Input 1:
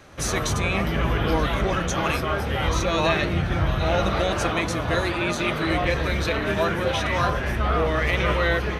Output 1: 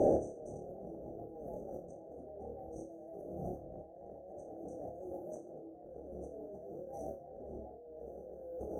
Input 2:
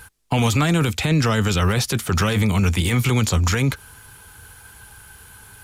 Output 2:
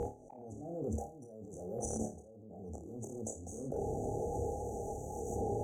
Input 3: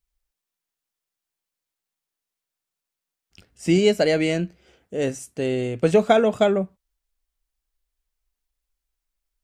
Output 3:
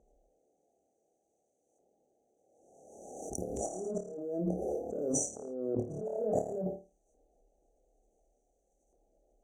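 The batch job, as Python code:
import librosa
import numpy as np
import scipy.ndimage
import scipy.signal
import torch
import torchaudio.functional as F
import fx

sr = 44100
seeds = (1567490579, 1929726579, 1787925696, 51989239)

y = fx.graphic_eq(x, sr, hz=(125, 500, 1000, 2000, 4000), db=(-6, 5, -6, -8, -6))
y = np.repeat(scipy.signal.resample_poly(y, 1, 3), 3)[:len(y)]
y = fx.brickwall_bandstop(y, sr, low_hz=840.0, high_hz=5800.0)
y = fx.low_shelf(y, sr, hz=490.0, db=10.0)
y = fx.filter_lfo_bandpass(y, sr, shape='saw_up', hz=0.56, low_hz=790.0, high_hz=1800.0, q=0.88)
y = fx.over_compress(y, sr, threshold_db=-50.0, ratio=-1.0)
y = fx.room_flutter(y, sr, wall_m=4.7, rt60_s=0.3)
y = fx.pre_swell(y, sr, db_per_s=37.0)
y = y * 10.0 ** (2.0 / 20.0)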